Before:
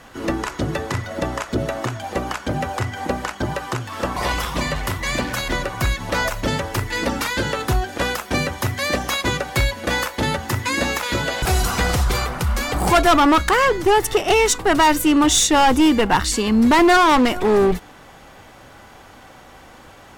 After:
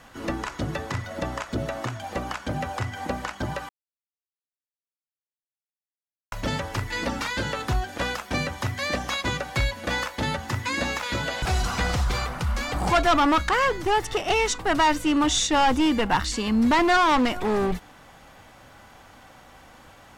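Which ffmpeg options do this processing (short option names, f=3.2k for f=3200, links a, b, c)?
-filter_complex "[0:a]asplit=3[a][b][c];[a]atrim=end=3.69,asetpts=PTS-STARTPTS,afade=t=out:st=3.686:d=0.004:c=hsin[d];[b]atrim=start=3.69:end=6.32,asetpts=PTS-STARTPTS,volume=0[e];[c]atrim=start=6.32,asetpts=PTS-STARTPTS,afade=t=in:d=0.004:c=hsin[f];[d][e][f]concat=n=3:v=0:a=1,acrossover=split=7400[g][h];[h]acompressor=threshold=-45dB:ratio=4:attack=1:release=60[i];[g][i]amix=inputs=2:normalize=0,equalizer=f=390:t=o:w=0.54:g=-5,volume=-5dB"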